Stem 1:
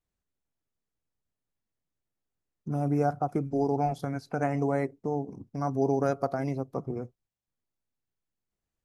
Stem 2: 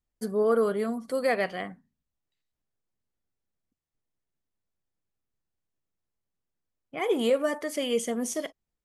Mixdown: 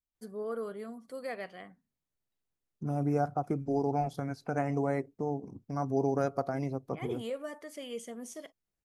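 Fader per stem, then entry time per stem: −3.0, −13.0 decibels; 0.15, 0.00 seconds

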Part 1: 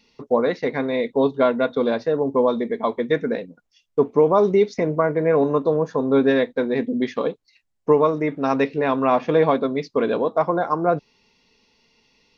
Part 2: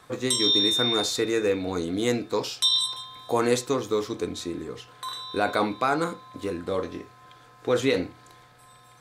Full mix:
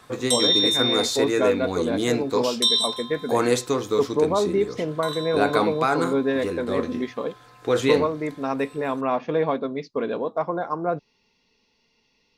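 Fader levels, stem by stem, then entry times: −5.5, +2.0 decibels; 0.00, 0.00 seconds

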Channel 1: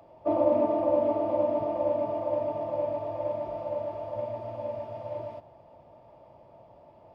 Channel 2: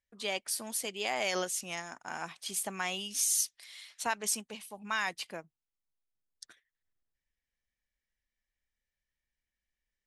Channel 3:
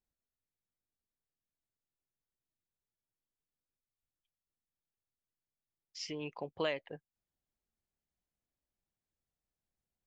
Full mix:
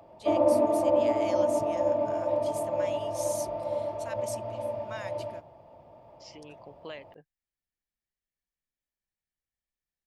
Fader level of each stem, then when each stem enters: +1.0, −10.5, −7.5 decibels; 0.00, 0.00, 0.25 seconds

